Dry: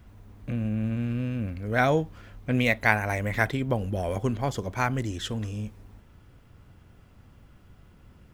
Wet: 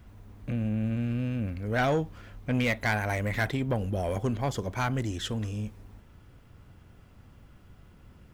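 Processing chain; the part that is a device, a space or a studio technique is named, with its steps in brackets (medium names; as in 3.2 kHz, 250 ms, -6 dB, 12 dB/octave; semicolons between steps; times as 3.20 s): saturation between pre-emphasis and de-emphasis (treble shelf 6.6 kHz +10 dB; saturation -19.5 dBFS, distortion -11 dB; treble shelf 6.6 kHz -10 dB)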